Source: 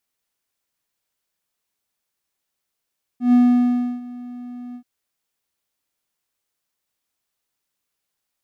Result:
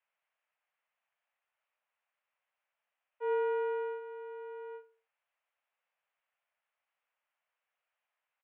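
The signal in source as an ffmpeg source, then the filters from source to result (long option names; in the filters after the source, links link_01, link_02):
-f lavfi -i "aevalsrc='0.422*(1-4*abs(mod(245*t+0.25,1)-0.5))':duration=1.63:sample_rate=44100,afade=type=in:duration=0.129,afade=type=out:start_time=0.129:duration=0.675:silence=0.0841,afade=type=out:start_time=1.55:duration=0.08"
-filter_complex "[0:a]acompressor=threshold=-24dB:ratio=2,asplit=2[link_01][link_02];[link_02]adelay=62,lowpass=frequency=2000:poles=1,volume=-13dB,asplit=2[link_03][link_04];[link_04]adelay=62,lowpass=frequency=2000:poles=1,volume=0.37,asplit=2[link_05][link_06];[link_06]adelay=62,lowpass=frequency=2000:poles=1,volume=0.37,asplit=2[link_07][link_08];[link_08]adelay=62,lowpass=frequency=2000:poles=1,volume=0.37[link_09];[link_01][link_03][link_05][link_07][link_09]amix=inputs=5:normalize=0,highpass=frequency=330:width_type=q:width=0.5412,highpass=frequency=330:width_type=q:width=1.307,lowpass=frequency=2600:width_type=q:width=0.5176,lowpass=frequency=2600:width_type=q:width=0.7071,lowpass=frequency=2600:width_type=q:width=1.932,afreqshift=210"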